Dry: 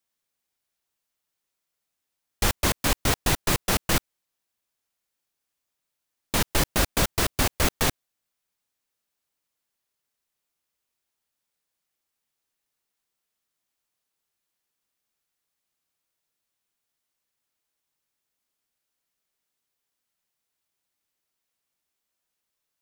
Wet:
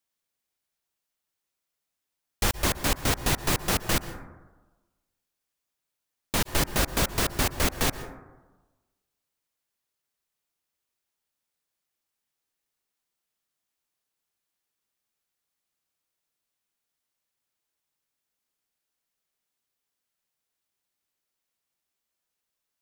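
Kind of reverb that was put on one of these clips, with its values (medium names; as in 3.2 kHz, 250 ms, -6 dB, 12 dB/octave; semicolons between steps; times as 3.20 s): plate-style reverb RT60 1.2 s, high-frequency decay 0.25×, pre-delay 110 ms, DRR 12.5 dB; trim -2 dB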